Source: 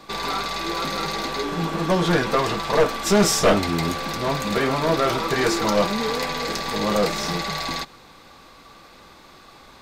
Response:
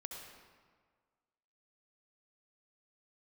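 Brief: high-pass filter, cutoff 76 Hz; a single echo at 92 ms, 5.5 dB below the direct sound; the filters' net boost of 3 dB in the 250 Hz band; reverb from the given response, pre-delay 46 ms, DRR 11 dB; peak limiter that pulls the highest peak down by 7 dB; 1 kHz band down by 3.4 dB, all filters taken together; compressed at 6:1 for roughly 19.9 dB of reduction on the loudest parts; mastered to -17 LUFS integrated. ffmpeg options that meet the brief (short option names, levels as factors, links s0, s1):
-filter_complex "[0:a]highpass=76,equalizer=f=250:t=o:g=4.5,equalizer=f=1000:t=o:g=-4.5,acompressor=threshold=0.02:ratio=6,alimiter=level_in=2:limit=0.0631:level=0:latency=1,volume=0.501,aecho=1:1:92:0.531,asplit=2[s0][s1];[1:a]atrim=start_sample=2205,adelay=46[s2];[s1][s2]afir=irnorm=-1:irlink=0,volume=0.376[s3];[s0][s3]amix=inputs=2:normalize=0,volume=11.2"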